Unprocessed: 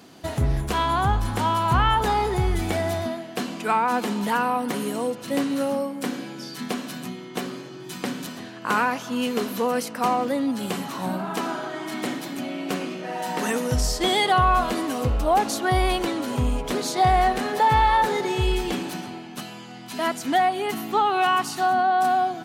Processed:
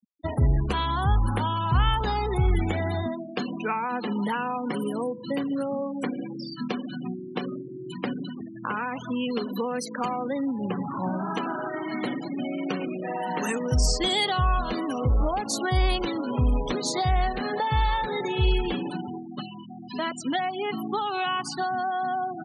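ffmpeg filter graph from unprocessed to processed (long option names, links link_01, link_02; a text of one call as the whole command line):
ffmpeg -i in.wav -filter_complex "[0:a]asettb=1/sr,asplit=3[link_01][link_02][link_03];[link_01]atrim=end=8.544[link_04];[link_02]atrim=start=8.54:end=9.3,asetpts=PTS-STARTPTS,afade=type=in:duration=0.004:curve=qsin,afade=type=out:start_time=0.756:duration=0.004:curve=qsin,equalizer=frequency=78:width_type=o:width=1.3:gain=9,acompressor=threshold=-26dB:ratio=2:attack=3.2:release=140:knee=1:detection=peak[link_05];[link_03]atrim=start=9.296[link_06];[link_04][link_05]acrossfade=duration=0.004:curve1=hsin:curve2=qsin[link_07];[link_07][link_06]acrossfade=duration=0.004:curve1=qsin:curve2=hsin,asettb=1/sr,asplit=3[link_08][link_09][link_10];[link_08]atrim=end=10.484[link_11];[link_09]atrim=start=10.48:end=11,asetpts=PTS-STARTPTS,afade=type=in:duration=0.004:curve=qsin,afade=type=out:start_time=0.516:duration=0.004:curve=qsin,lowpass=2400,asubboost=boost=9:cutoff=200[link_12];[link_10]atrim=start=10.996[link_13];[link_11][link_12]acrossfade=duration=0.004:curve1=hsin:curve2=qsin[link_14];[link_14][link_13]acrossfade=duration=0.004:curve1=qsin:curve2=hsin,bandreject=frequency=680:width=13,afftfilt=real='re*gte(hypot(re,im),0.0355)':imag='im*gte(hypot(re,im),0.0355)':win_size=1024:overlap=0.75,acrossover=split=140|3000[link_15][link_16][link_17];[link_16]acompressor=threshold=-28dB:ratio=6[link_18];[link_15][link_18][link_17]amix=inputs=3:normalize=0,volume=2dB" out.wav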